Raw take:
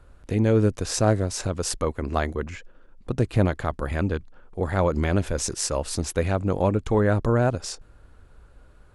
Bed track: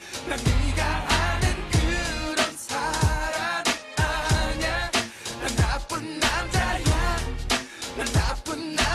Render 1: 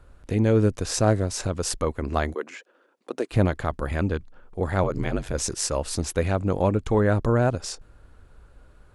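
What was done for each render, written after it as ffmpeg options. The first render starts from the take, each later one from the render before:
-filter_complex "[0:a]asettb=1/sr,asplit=3[s0][s1][s2];[s0]atrim=end=2.344[s3];[s1]atrim=start=2.34:end=3.31,asetpts=PTS-STARTPTS,afade=t=in:d=0.004:c=qsin,afade=t=out:st=0.966:d=0.004:c=qsin,highpass=f=310:w=0.5412,highpass=f=310:w=1.3066[s4];[s2]atrim=start=3.306[s5];[s3][s4]acrossfade=d=0.004:c1=hsin:c2=qsin[s6];[s6][s5]acrossfade=d=0.004:c1=qsin:c2=hsin,asettb=1/sr,asplit=3[s7][s8][s9];[s7]atrim=end=4.834[s10];[s8]atrim=start=4.83:end=5.34,asetpts=PTS-STARTPTS,afade=t=in:d=0.004:c=qsin,afade=t=out:st=0.506:d=0.004:c=qsin,aeval=exprs='val(0)*sin(2*PI*48*n/s)':c=same[s11];[s9]atrim=start=5.336[s12];[s10][s11]acrossfade=d=0.004:c1=hsin:c2=qsin[s13];[s13][s12]acrossfade=d=0.004:c1=qsin:c2=hsin"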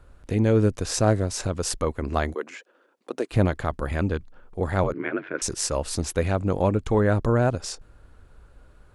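-filter_complex "[0:a]asettb=1/sr,asplit=3[s0][s1][s2];[s0]atrim=end=4.934[s3];[s1]atrim=start=4.93:end=5.42,asetpts=PTS-STARTPTS,afade=t=in:d=0.004:c=qsin,afade=t=out:st=0.486:d=0.004:c=qsin,highpass=f=210:w=0.5412,highpass=f=210:w=1.3066,equalizer=f=220:t=q:w=4:g=-8,equalizer=f=330:t=q:w=4:g=6,equalizer=f=520:t=q:w=4:g=-4,equalizer=f=800:t=q:w=4:g=-8,equalizer=f=1500:t=q:w=4:g=8,equalizer=f=2200:t=q:w=4:g=4,lowpass=f=2600:w=0.5412,lowpass=f=2600:w=1.3066[s4];[s2]atrim=start=5.416[s5];[s3][s4]acrossfade=d=0.004:c1=hsin:c2=qsin[s6];[s6][s5]acrossfade=d=0.004:c1=qsin:c2=hsin"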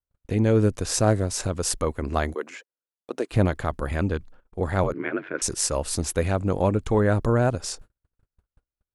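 -af "agate=range=0.00708:threshold=0.00708:ratio=16:detection=peak,adynamicequalizer=threshold=0.00631:dfrequency=7800:dqfactor=0.7:tfrequency=7800:tqfactor=0.7:attack=5:release=100:ratio=0.375:range=3:mode=boostabove:tftype=highshelf"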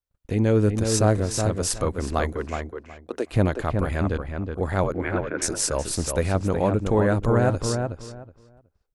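-filter_complex "[0:a]asplit=2[s0][s1];[s1]adelay=370,lowpass=f=2200:p=1,volume=0.562,asplit=2[s2][s3];[s3]adelay=370,lowpass=f=2200:p=1,volume=0.2,asplit=2[s4][s5];[s5]adelay=370,lowpass=f=2200:p=1,volume=0.2[s6];[s0][s2][s4][s6]amix=inputs=4:normalize=0"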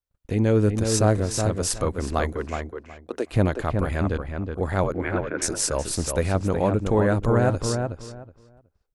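-af anull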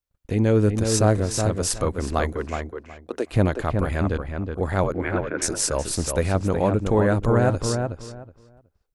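-af "volume=1.12"

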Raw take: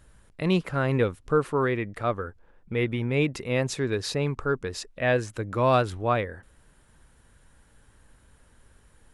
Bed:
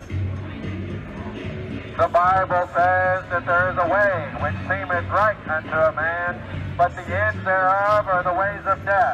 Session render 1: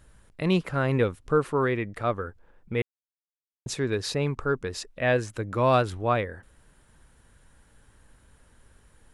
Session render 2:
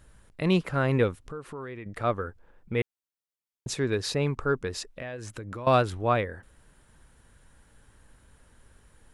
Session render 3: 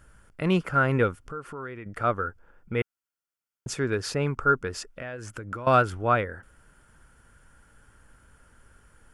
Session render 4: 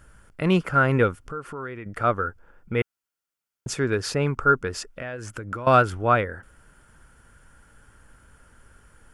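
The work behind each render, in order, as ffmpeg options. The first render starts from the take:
-filter_complex "[0:a]asplit=3[s0][s1][s2];[s0]atrim=end=2.82,asetpts=PTS-STARTPTS,afade=t=out:st=2.816:d=0.004:c=hsin[s3];[s1]atrim=start=2.82:end=3.66,asetpts=PTS-STARTPTS,volume=0[s4];[s2]atrim=start=3.66,asetpts=PTS-STARTPTS,afade=t=in:d=0.004:c=hsin[s5];[s3][s4][s5]concat=n=3:v=0:a=1"
-filter_complex "[0:a]asettb=1/sr,asplit=3[s0][s1][s2];[s0]atrim=end=1.184[s3];[s1]atrim=start=1.18:end=1.86,asetpts=PTS-STARTPTS,afade=t=in:d=0.004:c=qsin,afade=t=out:st=0.676:d=0.004:c=qsin,acompressor=threshold=0.01:ratio=3:attack=3.2:release=140:knee=1:detection=peak[s4];[s2]atrim=start=1.856[s5];[s3][s4]acrossfade=d=0.004:c1=hsin:c2=qsin[s6];[s6][s5]acrossfade=d=0.004:c1=qsin:c2=hsin,asettb=1/sr,asplit=3[s7][s8][s9];[s7]atrim=end=4.874[s10];[s8]atrim=start=4.87:end=5.67,asetpts=PTS-STARTPTS,afade=t=in:d=0.004:c=qsin,afade=t=out:st=0.796:d=0.004:c=qsin,acompressor=threshold=0.0224:ratio=20:attack=3.2:release=140:knee=1:detection=peak[s11];[s9]atrim=start=5.666[s12];[s10][s11]acrossfade=d=0.004:c1=hsin:c2=qsin[s13];[s13][s12]acrossfade=d=0.004:c1=qsin:c2=hsin"
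-af "equalizer=f=1400:w=5.6:g=11,bandreject=f=3900:w=5.3"
-af "volume=1.41"

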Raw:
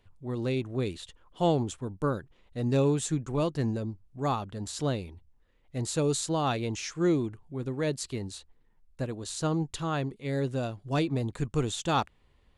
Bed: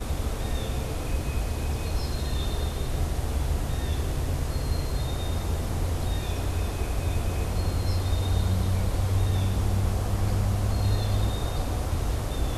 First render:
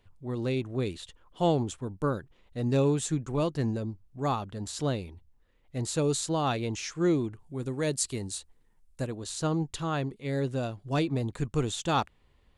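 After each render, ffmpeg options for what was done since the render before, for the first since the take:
-filter_complex "[0:a]asettb=1/sr,asplit=3[s0][s1][s2];[s0]atrim=end=7.394[s3];[s1]atrim=start=7.39:end=9.07,asetpts=PTS-STARTPTS,afade=t=in:d=0.004:c=qsin,afade=t=out:st=1.676:d=0.004:c=qsin,equalizer=f=9000:t=o:w=1.2:g=10.5[s4];[s2]atrim=start=9.066[s5];[s3][s4]acrossfade=d=0.004:c1=hsin:c2=qsin[s6];[s6][s5]acrossfade=d=0.004:c1=qsin:c2=hsin"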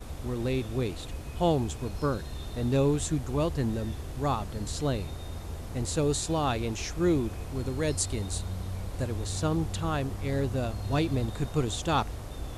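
-filter_complex "[1:a]volume=0.316[s0];[0:a][s0]amix=inputs=2:normalize=0"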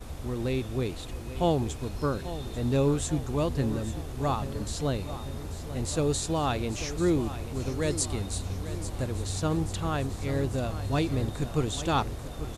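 -af "aecho=1:1:840|1680|2520|3360|4200|5040|5880:0.224|0.134|0.0806|0.0484|0.029|0.0174|0.0104"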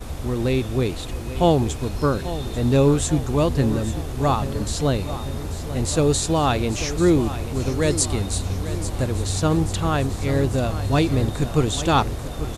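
-af "volume=2.51"

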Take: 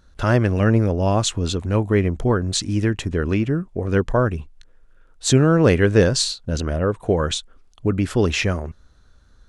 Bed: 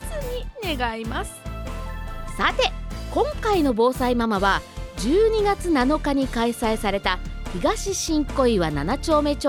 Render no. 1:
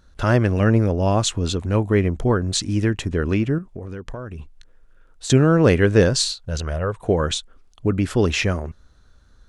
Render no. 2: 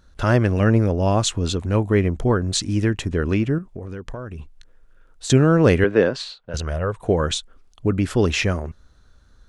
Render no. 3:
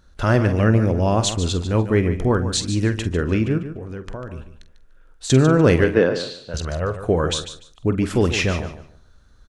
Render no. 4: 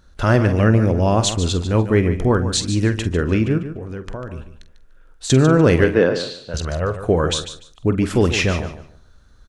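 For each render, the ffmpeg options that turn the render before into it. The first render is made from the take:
-filter_complex "[0:a]asettb=1/sr,asplit=3[s0][s1][s2];[s0]atrim=end=3.584[s3];[s1]atrim=start=3.58:end=5.3,asetpts=PTS-STARTPTS,afade=t=in:d=0.004:c=qsin,afade=t=out:st=1.716:d=0.004:c=qsin,acompressor=threshold=0.0398:ratio=10:attack=3.2:release=140:knee=1:detection=peak[s4];[s2]atrim=start=5.296[s5];[s3][s4]acrossfade=d=0.004:c1=hsin:c2=qsin[s6];[s6][s5]acrossfade=d=0.004:c1=qsin:c2=hsin,asettb=1/sr,asplit=3[s7][s8][s9];[s7]atrim=end=6.164[s10];[s8]atrim=start=6.16:end=7,asetpts=PTS-STARTPTS,afade=t=in:d=0.004:c=qsin,afade=t=out:st=0.836:d=0.004:c=qsin,equalizer=f=270:t=o:w=1:g=-13[s11];[s9]atrim=start=6.996[s12];[s10][s11]acrossfade=d=0.004:c1=hsin:c2=qsin[s13];[s13][s12]acrossfade=d=0.004:c1=qsin:c2=hsin"
-filter_complex "[0:a]asettb=1/sr,asplit=3[s0][s1][s2];[s0]atrim=end=5.844[s3];[s1]atrim=start=5.84:end=6.54,asetpts=PTS-STARTPTS,afade=t=in:d=0.004:c=qsin,afade=t=out:st=0.696:d=0.004:c=qsin,acrossover=split=200 3400:gain=0.126 1 0.0708[s4][s5][s6];[s4][s5][s6]amix=inputs=3:normalize=0[s7];[s2]atrim=start=6.536[s8];[s3][s7]acrossfade=d=0.004:c1=hsin:c2=qsin[s9];[s9][s8]acrossfade=d=0.004:c1=qsin:c2=hsin"
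-filter_complex "[0:a]asplit=2[s0][s1];[s1]adelay=46,volume=0.237[s2];[s0][s2]amix=inputs=2:normalize=0,asplit=2[s3][s4];[s4]aecho=0:1:147|294|441:0.282|0.0592|0.0124[s5];[s3][s5]amix=inputs=2:normalize=0"
-af "volume=1.26,alimiter=limit=0.708:level=0:latency=1"

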